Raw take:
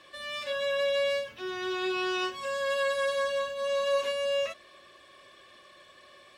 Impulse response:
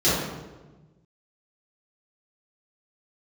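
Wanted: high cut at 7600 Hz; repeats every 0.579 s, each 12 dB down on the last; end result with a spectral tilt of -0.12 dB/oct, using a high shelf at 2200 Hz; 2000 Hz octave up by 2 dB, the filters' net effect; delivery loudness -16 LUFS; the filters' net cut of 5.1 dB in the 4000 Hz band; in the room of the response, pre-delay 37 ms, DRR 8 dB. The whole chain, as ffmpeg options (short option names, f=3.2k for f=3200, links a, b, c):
-filter_complex "[0:a]lowpass=7.6k,equalizer=f=2k:t=o:g=7.5,highshelf=f=2.2k:g=-7,equalizer=f=4k:t=o:g=-4.5,aecho=1:1:579|1158|1737:0.251|0.0628|0.0157,asplit=2[a][b];[1:a]atrim=start_sample=2205,adelay=37[c];[b][c]afir=irnorm=-1:irlink=0,volume=-26dB[d];[a][d]amix=inputs=2:normalize=0,volume=12dB"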